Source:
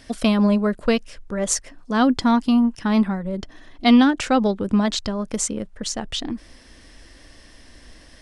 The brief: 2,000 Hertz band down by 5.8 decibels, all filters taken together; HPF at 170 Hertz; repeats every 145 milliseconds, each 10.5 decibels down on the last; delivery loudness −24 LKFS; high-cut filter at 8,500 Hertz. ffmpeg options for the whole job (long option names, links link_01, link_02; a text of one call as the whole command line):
ffmpeg -i in.wav -af "highpass=170,lowpass=8500,equalizer=frequency=2000:width_type=o:gain=-8,aecho=1:1:145|290|435:0.299|0.0896|0.0269,volume=-2.5dB" out.wav